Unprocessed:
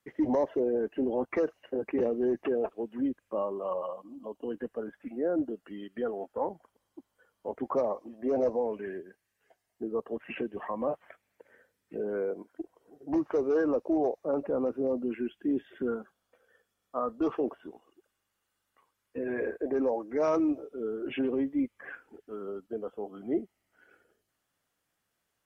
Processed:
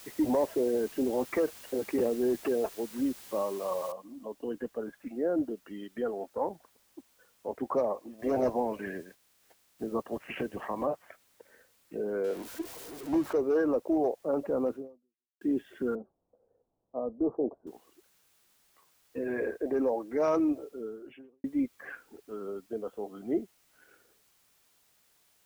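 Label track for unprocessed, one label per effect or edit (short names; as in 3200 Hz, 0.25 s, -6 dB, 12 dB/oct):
3.920000	3.920000	noise floor step -50 dB -68 dB
8.180000	10.850000	spectral limiter ceiling under each frame's peak by 12 dB
12.240000	13.330000	zero-crossing step of -40 dBFS
14.750000	15.410000	fade out exponential
15.950000	17.670000	inverse Chebyshev low-pass stop band from 2500 Hz, stop band 60 dB
20.670000	21.440000	fade out quadratic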